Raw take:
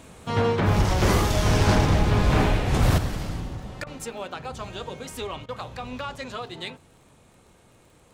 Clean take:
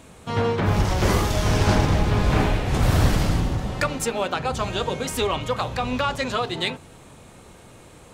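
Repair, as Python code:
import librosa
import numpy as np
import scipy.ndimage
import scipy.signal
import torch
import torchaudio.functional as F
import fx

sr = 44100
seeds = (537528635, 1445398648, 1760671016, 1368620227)

y = fx.fix_declip(x, sr, threshold_db=-12.0)
y = fx.fix_declick_ar(y, sr, threshold=6.5)
y = fx.fix_interpolate(y, sr, at_s=(3.84, 5.46), length_ms=25.0)
y = fx.fix_level(y, sr, at_s=2.98, step_db=9.5)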